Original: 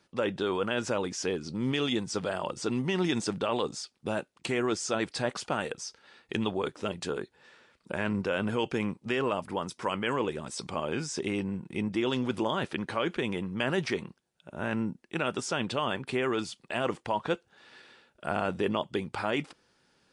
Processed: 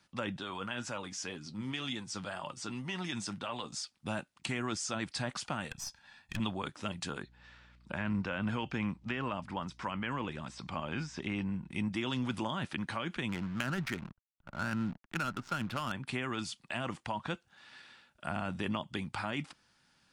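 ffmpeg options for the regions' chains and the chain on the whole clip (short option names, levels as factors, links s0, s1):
-filter_complex "[0:a]asettb=1/sr,asplit=3[s0][s1][s2];[s0]atrim=end=0.374[s3];[s1]atrim=start=0.37:end=3.72,asetpts=PTS-STARTPTS,afade=t=in:d=0.004:c=qsin,afade=t=out:st=3.346:d=0.004:c=qsin,lowshelf=f=64:g=-11,flanger=delay=6.6:depth=4.3:regen=56:speed=1.9:shape=triangular[s4];[s2]atrim=start=3.716[s5];[s3][s4]acrossfade=d=0.004:c1=hsin:c2=qsin[s6];[s6][s5]acrossfade=d=0.004:c1=qsin:c2=hsin,asettb=1/sr,asplit=3[s7][s8][s9];[s7]atrim=end=5.714[s10];[s8]atrim=start=5.71:end=6.4,asetpts=PTS-STARTPTS,afade=t=in:d=0.004:c=qsin,afade=t=out:st=0.686:d=0.004:c=qsin,lowshelf=f=140:g=7,aecho=1:1:1.2:0.65,atrim=end_sample=30429,aeval=exprs='(tanh(35.5*val(0)+0.6)-tanh(0.6))/35.5':c=same[s11];[s9]atrim=start=6.396[s12];[s10][s11]acrossfade=d=0.004:c1=hsin:c2=qsin[s13];[s13][s12]acrossfade=d=0.004:c1=qsin:c2=hsin,asettb=1/sr,asplit=3[s14][s15][s16];[s14]atrim=end=7.234[s17];[s15]atrim=start=7.23:end=11.71,asetpts=PTS-STARTPTS,afade=t=in:d=0.004:c=qsin,afade=t=out:st=4.476:d=0.004:c=qsin,acrossover=split=2900[s18][s19];[s19]acompressor=threshold=0.00562:ratio=4:attack=1:release=60[s20];[s18][s20]amix=inputs=2:normalize=0,lowpass=5600,aeval=exprs='val(0)+0.001*(sin(2*PI*60*n/s)+sin(2*PI*2*60*n/s)/2+sin(2*PI*3*60*n/s)/3+sin(2*PI*4*60*n/s)/4+sin(2*PI*5*60*n/s)/5)':c=same[s21];[s16]atrim=start=11.706[s22];[s17][s21]acrossfade=d=0.004:c1=hsin:c2=qsin[s23];[s23][s22]acrossfade=d=0.004:c1=qsin:c2=hsin,asettb=1/sr,asplit=3[s24][s25][s26];[s24]atrim=end=13.294[s27];[s25]atrim=start=13.29:end=15.92,asetpts=PTS-STARTPTS,afade=t=in:d=0.004:c=qsin,afade=t=out:st=2.626:d=0.004:c=qsin,equalizer=f=1400:t=o:w=0.36:g=10.5,acrusher=bits=8:dc=4:mix=0:aa=0.000001,adynamicsmooth=sensitivity=6.5:basefreq=740[s28];[s26]atrim=start=15.916[s29];[s27][s28]acrossfade=d=0.004:c1=hsin:c2=qsin[s30];[s30][s29]acrossfade=d=0.004:c1=qsin:c2=hsin,equalizer=f=430:t=o:w=0.86:g=-14,acrossover=split=390[s31][s32];[s32]acompressor=threshold=0.02:ratio=6[s33];[s31][s33]amix=inputs=2:normalize=0"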